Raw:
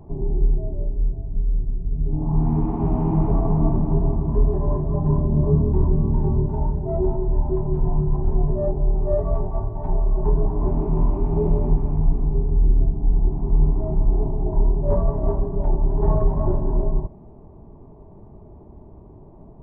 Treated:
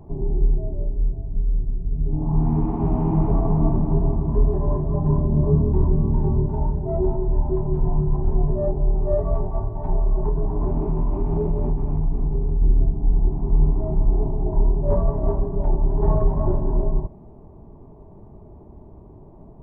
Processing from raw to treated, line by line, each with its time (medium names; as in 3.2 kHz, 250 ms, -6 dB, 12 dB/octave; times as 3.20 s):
10.23–12.62 s: compression, threshold -16 dBFS